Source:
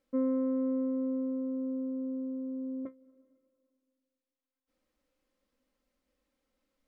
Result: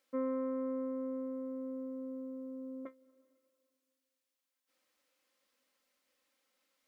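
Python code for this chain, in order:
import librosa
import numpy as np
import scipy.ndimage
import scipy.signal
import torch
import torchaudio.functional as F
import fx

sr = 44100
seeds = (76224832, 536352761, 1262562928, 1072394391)

y = fx.highpass(x, sr, hz=1500.0, slope=6)
y = F.gain(torch.from_numpy(y), 7.5).numpy()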